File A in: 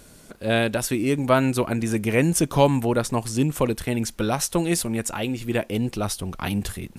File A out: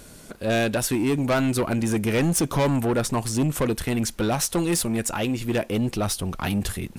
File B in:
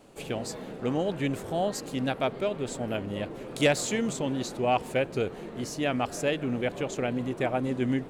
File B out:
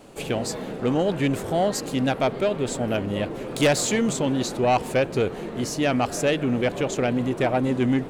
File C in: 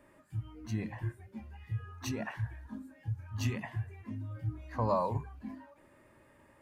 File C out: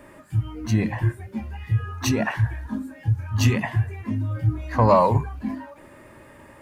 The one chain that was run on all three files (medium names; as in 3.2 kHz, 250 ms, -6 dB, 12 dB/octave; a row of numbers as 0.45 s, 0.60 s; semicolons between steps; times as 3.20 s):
saturation -20.5 dBFS; normalise loudness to -24 LUFS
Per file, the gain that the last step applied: +3.5 dB, +7.5 dB, +14.5 dB